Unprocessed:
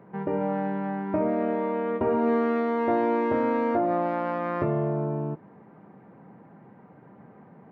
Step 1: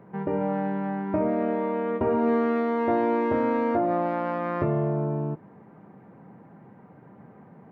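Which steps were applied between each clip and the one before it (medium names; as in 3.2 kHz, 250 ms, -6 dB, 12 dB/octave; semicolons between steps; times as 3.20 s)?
bass shelf 88 Hz +7.5 dB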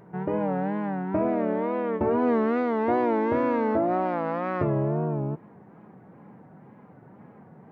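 wow and flutter 110 cents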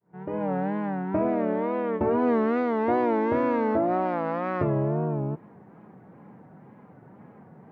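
fade-in on the opening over 0.53 s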